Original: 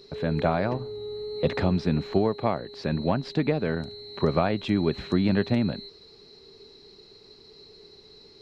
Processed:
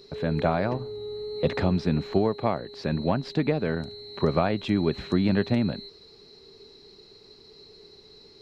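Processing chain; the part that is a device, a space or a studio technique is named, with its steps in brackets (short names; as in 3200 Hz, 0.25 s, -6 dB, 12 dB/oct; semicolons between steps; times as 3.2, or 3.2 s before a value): exciter from parts (in parallel at -13.5 dB: HPF 4900 Hz 12 dB/oct + soft clip -39 dBFS, distortion -19 dB)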